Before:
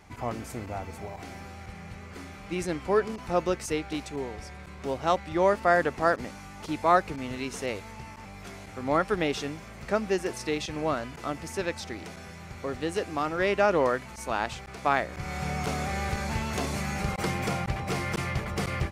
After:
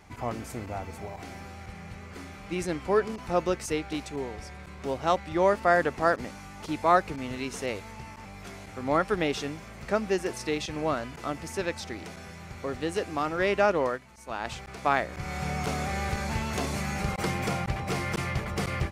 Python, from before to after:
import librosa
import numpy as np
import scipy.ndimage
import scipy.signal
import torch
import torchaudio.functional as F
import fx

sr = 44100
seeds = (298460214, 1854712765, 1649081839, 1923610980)

y = fx.upward_expand(x, sr, threshold_db=-38.0, expansion=1.5, at=(13.71, 14.44), fade=0.02)